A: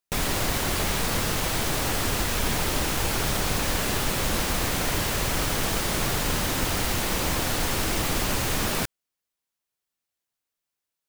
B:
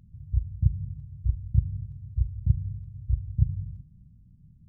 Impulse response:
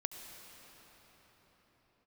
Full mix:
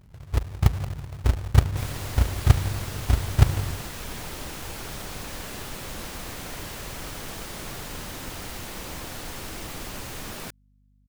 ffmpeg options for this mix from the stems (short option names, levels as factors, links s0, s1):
-filter_complex "[0:a]adelay=1650,volume=0.299[s0];[1:a]dynaudnorm=f=150:g=9:m=2.11,acrusher=bits=2:mode=log:mix=0:aa=0.000001,volume=0.944[s1];[s0][s1]amix=inputs=2:normalize=0,aeval=exprs='val(0)+0.001*(sin(2*PI*50*n/s)+sin(2*PI*2*50*n/s)/2+sin(2*PI*3*50*n/s)/3+sin(2*PI*4*50*n/s)/4+sin(2*PI*5*50*n/s)/5)':c=same"